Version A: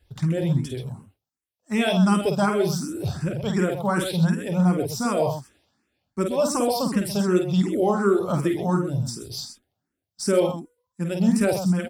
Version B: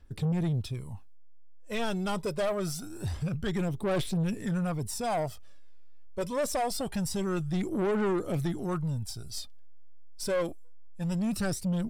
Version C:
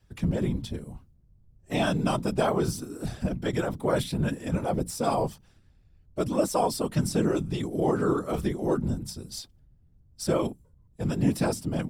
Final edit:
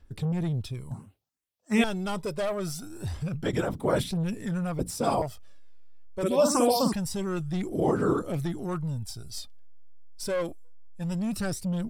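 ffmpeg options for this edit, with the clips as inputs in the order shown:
-filter_complex "[0:a]asplit=2[a][b];[2:a]asplit=3[c][d][e];[1:a]asplit=6[f][g][h][i][j][k];[f]atrim=end=0.912[l];[a]atrim=start=0.908:end=1.842[m];[g]atrim=start=1.838:end=3.432[n];[c]atrim=start=3.428:end=4.112[o];[h]atrim=start=4.108:end=4.792[p];[d]atrim=start=4.788:end=5.222[q];[i]atrim=start=5.218:end=6.232[r];[b]atrim=start=6.228:end=6.932[s];[j]atrim=start=6.928:end=7.722[t];[e]atrim=start=7.718:end=8.222[u];[k]atrim=start=8.218[v];[l][m]acrossfade=d=0.004:c1=hsin:c2=hsin[w];[w][n]acrossfade=d=0.004:c1=hsin:c2=hsin[x];[x][o]acrossfade=d=0.004:c1=hsin:c2=hsin[y];[y][p]acrossfade=d=0.004:c1=hsin:c2=hsin[z];[z][q]acrossfade=d=0.004:c1=hsin:c2=hsin[aa];[aa][r]acrossfade=d=0.004:c1=hsin:c2=hsin[ab];[ab][s]acrossfade=d=0.004:c1=hsin:c2=hsin[ac];[ac][t]acrossfade=d=0.004:c1=hsin:c2=hsin[ad];[ad][u]acrossfade=d=0.004:c1=hsin:c2=hsin[ae];[ae][v]acrossfade=d=0.004:c1=hsin:c2=hsin"

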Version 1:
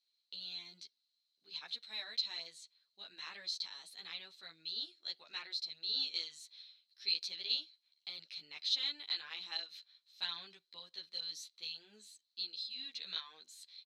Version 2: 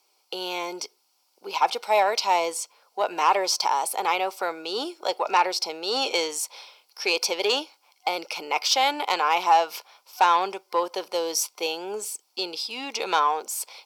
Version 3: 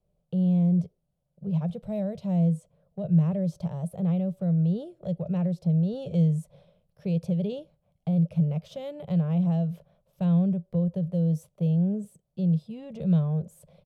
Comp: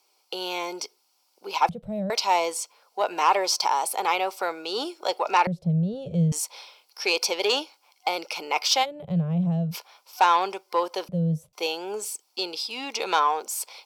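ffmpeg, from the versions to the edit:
-filter_complex "[2:a]asplit=4[a][b][c][d];[1:a]asplit=5[e][f][g][h][i];[e]atrim=end=1.692[j];[a]atrim=start=1.688:end=2.102[k];[f]atrim=start=2.098:end=5.472[l];[b]atrim=start=5.468:end=6.322[m];[g]atrim=start=6.318:end=8.86[n];[c]atrim=start=8.82:end=9.75[o];[h]atrim=start=9.71:end=11.092[p];[d]atrim=start=11.088:end=11.532[q];[i]atrim=start=11.528[r];[j][k]acrossfade=d=0.004:c1=hsin:c2=hsin[s];[s][l]acrossfade=d=0.004:c1=hsin:c2=hsin[t];[t][m]acrossfade=d=0.004:c1=hsin:c2=hsin[u];[u][n]acrossfade=d=0.004:c1=hsin:c2=hsin[v];[v][o]acrossfade=d=0.04:c1=tri:c2=tri[w];[w][p]acrossfade=d=0.04:c1=tri:c2=tri[x];[x][q]acrossfade=d=0.004:c1=hsin:c2=hsin[y];[y][r]acrossfade=d=0.004:c1=hsin:c2=hsin"

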